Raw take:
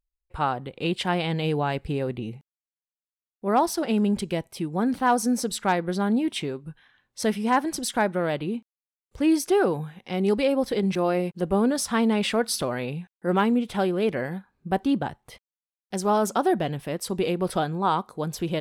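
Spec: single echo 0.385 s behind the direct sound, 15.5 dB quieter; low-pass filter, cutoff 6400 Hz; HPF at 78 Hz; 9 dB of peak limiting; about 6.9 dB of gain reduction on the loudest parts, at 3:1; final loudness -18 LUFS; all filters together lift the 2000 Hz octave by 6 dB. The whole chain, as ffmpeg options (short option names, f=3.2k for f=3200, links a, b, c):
-af "highpass=78,lowpass=6.4k,equalizer=f=2k:t=o:g=8,acompressor=threshold=-25dB:ratio=3,alimiter=limit=-21.5dB:level=0:latency=1,aecho=1:1:385:0.168,volume=13.5dB"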